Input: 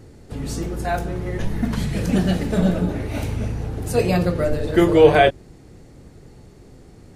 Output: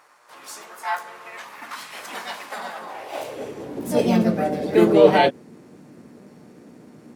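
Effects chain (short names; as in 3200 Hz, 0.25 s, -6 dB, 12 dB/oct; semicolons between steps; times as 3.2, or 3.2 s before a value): buzz 120 Hz, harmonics 17, -52 dBFS -5 dB/oct; harmoniser +4 st -1 dB; high-pass sweep 1100 Hz -> 220 Hz, 2.78–3.92; gain -5.5 dB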